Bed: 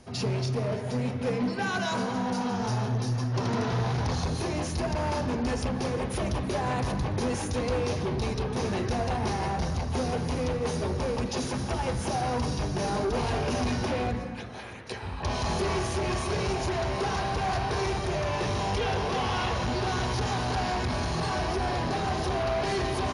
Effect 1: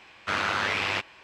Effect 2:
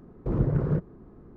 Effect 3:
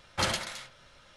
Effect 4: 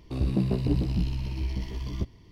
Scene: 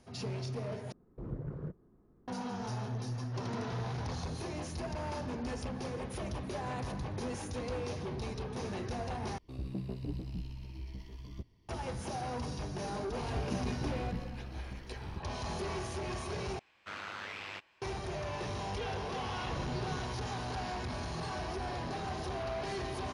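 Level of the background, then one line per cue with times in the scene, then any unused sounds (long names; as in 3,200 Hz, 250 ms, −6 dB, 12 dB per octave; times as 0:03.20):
bed −9.5 dB
0:00.92: overwrite with 2 −15.5 dB
0:09.38: overwrite with 4 −13.5 dB
0:13.15: mix in 4 −13 dB
0:16.59: overwrite with 1 −16 dB
0:19.19: mix in 2 −16.5 dB
not used: 3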